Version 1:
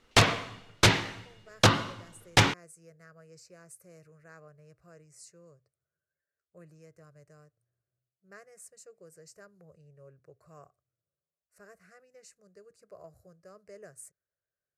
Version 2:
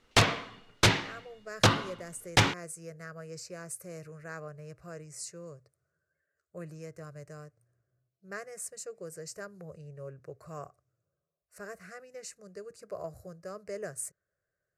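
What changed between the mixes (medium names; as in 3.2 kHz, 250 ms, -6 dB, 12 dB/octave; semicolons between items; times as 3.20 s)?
speech +10.5 dB; background: send -11.5 dB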